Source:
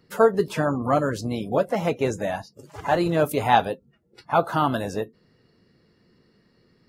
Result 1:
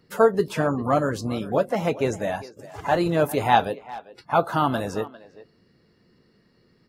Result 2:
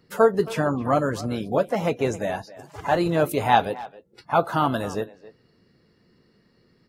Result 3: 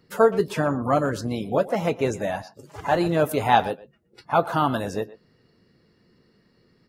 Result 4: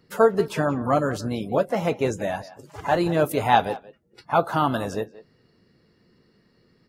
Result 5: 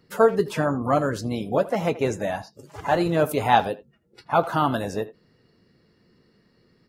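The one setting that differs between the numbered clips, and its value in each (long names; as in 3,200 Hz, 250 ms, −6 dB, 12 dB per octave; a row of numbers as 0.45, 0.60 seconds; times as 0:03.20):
far-end echo of a speakerphone, delay time: 400, 270, 120, 180, 80 milliseconds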